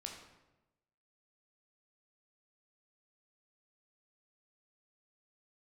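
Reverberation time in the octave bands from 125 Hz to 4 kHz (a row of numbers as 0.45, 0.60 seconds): 1.2, 1.1, 1.1, 0.95, 0.85, 0.70 seconds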